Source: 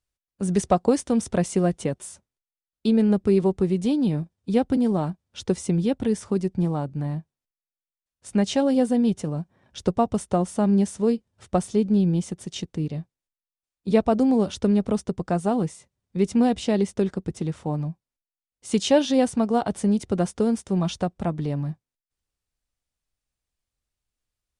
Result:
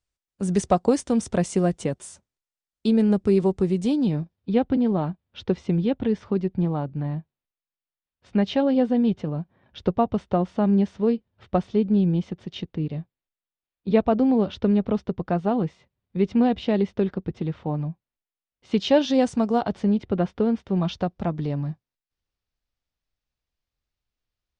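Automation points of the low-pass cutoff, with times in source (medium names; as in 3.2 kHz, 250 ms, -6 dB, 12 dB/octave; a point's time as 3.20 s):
low-pass 24 dB/octave
3.88 s 9.1 kHz
4.52 s 3.9 kHz
18.71 s 3.9 kHz
19.39 s 7.9 kHz
19.97 s 3.6 kHz
20.59 s 3.6 kHz
21.20 s 5.6 kHz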